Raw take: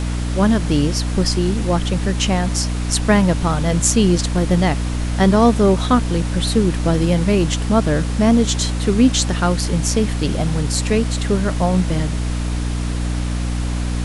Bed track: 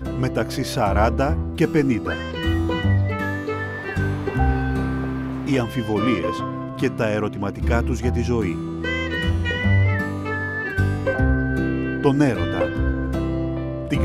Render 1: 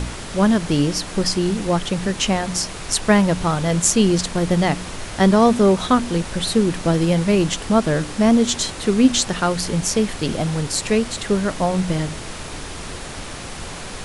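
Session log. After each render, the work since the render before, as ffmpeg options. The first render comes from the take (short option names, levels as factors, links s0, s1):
-af "bandreject=f=60:t=h:w=4,bandreject=f=120:t=h:w=4,bandreject=f=180:t=h:w=4,bandreject=f=240:t=h:w=4,bandreject=f=300:t=h:w=4"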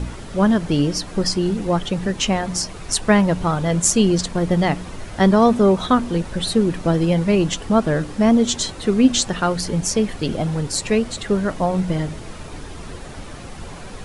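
-af "afftdn=nr=9:nf=-32"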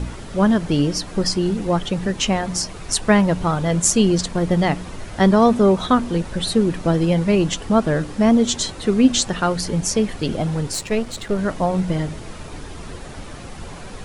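-filter_complex "[0:a]asettb=1/sr,asplit=3[s0][s1][s2];[s0]atrim=end=10.734[s3];[s1]atrim=start=10.73:end=11.39,asetpts=PTS-STARTPTS,afade=t=in:d=0.004:c=qsin,afade=t=out:st=0.656:d=0.004:c=qsin,aeval=exprs='if(lt(val(0),0),0.447*val(0),val(0))':c=same[s4];[s2]atrim=start=11.386[s5];[s3][s4]acrossfade=d=0.004:c1=hsin:c2=qsin[s6];[s6][s5]acrossfade=d=0.004:c1=qsin:c2=hsin"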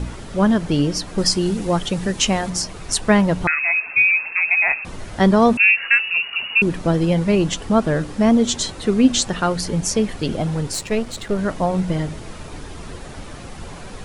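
-filter_complex "[0:a]asettb=1/sr,asplit=3[s0][s1][s2];[s0]atrim=end=1.184[s3];[s1]atrim=start=1.18:end=2.5,asetpts=PTS-STARTPTS,afade=t=in:d=0.004:c=qsin,afade=t=out:st=1.316:d=0.004:c=qsin,highshelf=f=4600:g=7.5[s4];[s2]atrim=start=2.496[s5];[s3][s4]acrossfade=d=0.004:c1=hsin:c2=qsin[s6];[s6][s5]acrossfade=d=0.004:c1=qsin:c2=hsin,asettb=1/sr,asplit=3[s7][s8][s9];[s7]atrim=end=3.474[s10];[s8]atrim=start=3.47:end=4.85,asetpts=PTS-STARTPTS,afade=t=in:d=0.004:c=qsin,afade=t=out:st=1.376:d=0.004:c=qsin,lowpass=f=2300:t=q:w=0.5098,lowpass=f=2300:t=q:w=0.6013,lowpass=f=2300:t=q:w=0.9,lowpass=f=2300:t=q:w=2.563,afreqshift=-2700[s11];[s9]atrim=start=4.846[s12];[s10][s11]acrossfade=d=0.004:c1=hsin:c2=qsin[s13];[s13][s12]acrossfade=d=0.004:c1=qsin:c2=hsin,asettb=1/sr,asplit=3[s14][s15][s16];[s14]atrim=end=5.574[s17];[s15]atrim=start=5.57:end=6.62,asetpts=PTS-STARTPTS,afade=t=in:d=0.004:c=qsin,afade=t=out:st=1.046:d=0.004:c=qsin,lowpass=f=2500:t=q:w=0.5098,lowpass=f=2500:t=q:w=0.6013,lowpass=f=2500:t=q:w=0.9,lowpass=f=2500:t=q:w=2.563,afreqshift=-2900[s18];[s16]atrim=start=6.616[s19];[s17][s18]acrossfade=d=0.004:c1=hsin:c2=qsin[s20];[s20][s19]acrossfade=d=0.004:c1=qsin:c2=hsin"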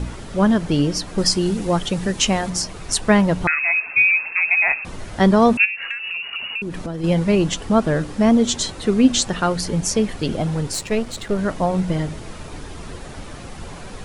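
-filter_complex "[0:a]asplit=3[s0][s1][s2];[s0]afade=t=out:st=5.64:d=0.02[s3];[s1]acompressor=threshold=0.0708:ratio=12:attack=3.2:release=140:knee=1:detection=peak,afade=t=in:st=5.64:d=0.02,afade=t=out:st=7.03:d=0.02[s4];[s2]afade=t=in:st=7.03:d=0.02[s5];[s3][s4][s5]amix=inputs=3:normalize=0"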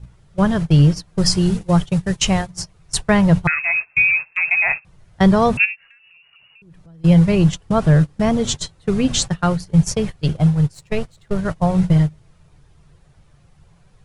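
-af "agate=range=0.0708:threshold=0.0891:ratio=16:detection=peak,lowshelf=f=190:t=q:w=3:g=6.5"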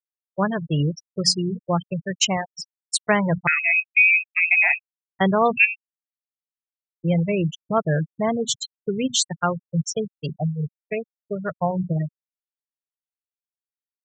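-af "highpass=f=480:p=1,afftfilt=real='re*gte(hypot(re,im),0.112)':imag='im*gte(hypot(re,im),0.112)':win_size=1024:overlap=0.75"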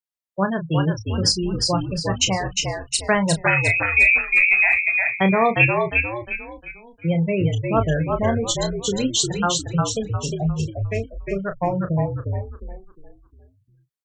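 -filter_complex "[0:a]asplit=2[s0][s1];[s1]adelay=31,volume=0.355[s2];[s0][s2]amix=inputs=2:normalize=0,asplit=6[s3][s4][s5][s6][s7][s8];[s4]adelay=355,afreqshift=-57,volume=0.668[s9];[s5]adelay=710,afreqshift=-114,volume=0.254[s10];[s6]adelay=1065,afreqshift=-171,volume=0.0966[s11];[s7]adelay=1420,afreqshift=-228,volume=0.0367[s12];[s8]adelay=1775,afreqshift=-285,volume=0.014[s13];[s3][s9][s10][s11][s12][s13]amix=inputs=6:normalize=0"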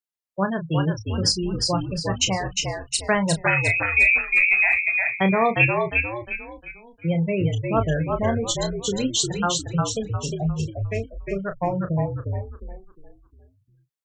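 -af "volume=0.794"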